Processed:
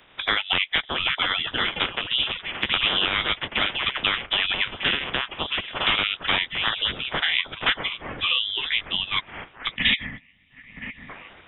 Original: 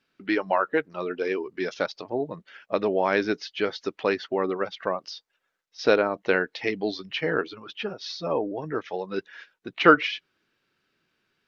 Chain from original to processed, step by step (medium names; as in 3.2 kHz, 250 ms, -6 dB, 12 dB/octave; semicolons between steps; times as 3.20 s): spectral peaks clipped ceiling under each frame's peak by 23 dB; ever faster or slower copies 696 ms, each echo +6 st, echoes 3, each echo -6 dB; integer overflow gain 10 dB; on a send: feedback echo behind a high-pass 966 ms, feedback 64%, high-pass 2.2 kHz, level -23.5 dB; on the sum: frequency inversion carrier 3.7 kHz; time-frequency box 9.76–11.09 s, 280–1700 Hz -19 dB; three bands compressed up and down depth 70%; trim +2 dB